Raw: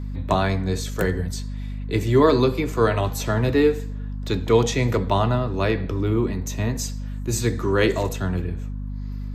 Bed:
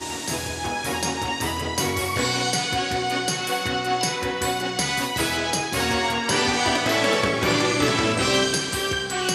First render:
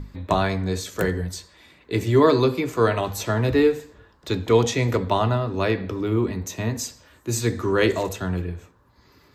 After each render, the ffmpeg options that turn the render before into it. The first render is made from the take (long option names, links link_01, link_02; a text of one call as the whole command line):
ffmpeg -i in.wav -af "bandreject=frequency=50:width_type=h:width=6,bandreject=frequency=100:width_type=h:width=6,bandreject=frequency=150:width_type=h:width=6,bandreject=frequency=200:width_type=h:width=6,bandreject=frequency=250:width_type=h:width=6" out.wav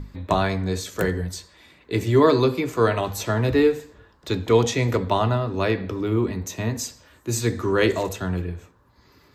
ffmpeg -i in.wav -af anull out.wav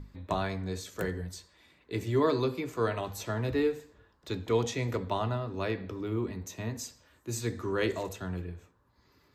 ffmpeg -i in.wav -af "volume=-10dB" out.wav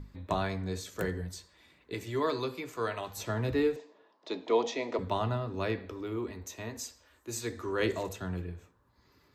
ffmpeg -i in.wav -filter_complex "[0:a]asettb=1/sr,asplit=3[link_01][link_02][link_03];[link_01]atrim=end=1.944[link_04];[link_02]atrim=start=1.94:end=3.17,asetpts=PTS-STARTPTS,afade=type=in:duration=0.004:curve=qsin,afade=type=out:start_time=1.226:duration=0.004:curve=qsin,lowshelf=frequency=460:gain=-9[link_05];[link_03]atrim=start=3.166[link_06];[link_04][link_05]acrossfade=duration=0.004:curve1=hsin:curve2=qsin[link_07];[link_07][link_06]acrossfade=duration=0.004:curve1=qsin:curve2=hsin,asettb=1/sr,asplit=3[link_08][link_09][link_10];[link_08]atrim=end=3.764[link_11];[link_09]atrim=start=3.76:end=4.99,asetpts=PTS-STARTPTS,afade=type=in:duration=0.004:curve=qsin,afade=type=out:start_time=1.226:duration=0.004:curve=qsin,highpass=frequency=250:width=0.5412,highpass=frequency=250:width=1.3066,equalizer=frequency=650:width_type=q:width=4:gain=8,equalizer=frequency=940:width_type=q:width=4:gain=5,equalizer=frequency=1500:width_type=q:width=4:gain=-7,lowpass=frequency=5800:width=0.5412,lowpass=frequency=5800:width=1.3066[link_12];[link_10]atrim=start=4.986[link_13];[link_11][link_12]acrossfade=duration=0.004:curve1=hsin:curve2=qsin[link_14];[link_14][link_13]acrossfade=duration=0.004:curve1=qsin:curve2=hsin,asettb=1/sr,asplit=3[link_15][link_16][link_17];[link_15]atrim=end=5.794[link_18];[link_16]atrim=start=5.79:end=7.8,asetpts=PTS-STARTPTS,afade=type=in:duration=0.004:curve=qsin,afade=type=out:start_time=2.006:duration=0.004:curve=qsin,equalizer=frequency=150:width=1.5:gain=-14.5[link_19];[link_17]atrim=start=7.796[link_20];[link_18][link_19]acrossfade=duration=0.004:curve1=hsin:curve2=qsin[link_21];[link_21][link_20]acrossfade=duration=0.004:curve1=qsin:curve2=hsin" out.wav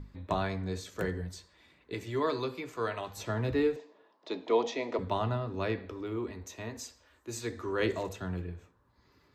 ffmpeg -i in.wav -af "highshelf=frequency=8300:gain=-9" out.wav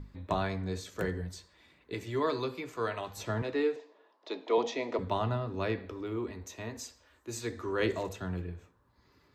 ffmpeg -i in.wav -filter_complex "[0:a]asettb=1/sr,asplit=3[link_01][link_02][link_03];[link_01]atrim=end=3.424[link_04];[link_02]atrim=start=3.42:end=4.58,asetpts=PTS-STARTPTS,afade=type=in:duration=0.004:curve=qsin,afade=type=out:start_time=1.156:duration=0.004:curve=qsin,highpass=310,lowpass=7700[link_05];[link_03]atrim=start=4.576[link_06];[link_04][link_05]acrossfade=duration=0.004:curve1=hsin:curve2=qsin[link_07];[link_07][link_06]acrossfade=duration=0.004:curve1=qsin:curve2=hsin" out.wav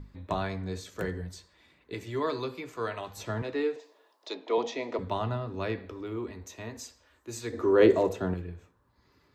ffmpeg -i in.wav -filter_complex "[0:a]asplit=3[link_01][link_02][link_03];[link_01]afade=type=out:start_time=3.78:duration=0.02[link_04];[link_02]bass=frequency=250:gain=-7,treble=frequency=4000:gain=12,afade=type=in:start_time=3.78:duration=0.02,afade=type=out:start_time=4.33:duration=0.02[link_05];[link_03]afade=type=in:start_time=4.33:duration=0.02[link_06];[link_04][link_05][link_06]amix=inputs=3:normalize=0,asettb=1/sr,asplit=3[link_07][link_08][link_09];[link_07]atrim=end=7.534[link_10];[link_08]atrim=start=7.53:end=8.34,asetpts=PTS-STARTPTS,afade=type=in:duration=0.004:curve=qsin,afade=type=out:start_time=0.806:duration=0.004:curve=qsin,equalizer=frequency=420:width_type=o:width=2.4:gain=12[link_11];[link_09]atrim=start=8.336[link_12];[link_10][link_11]acrossfade=duration=0.004:curve1=hsin:curve2=qsin[link_13];[link_13][link_12]acrossfade=duration=0.004:curve1=qsin:curve2=hsin" out.wav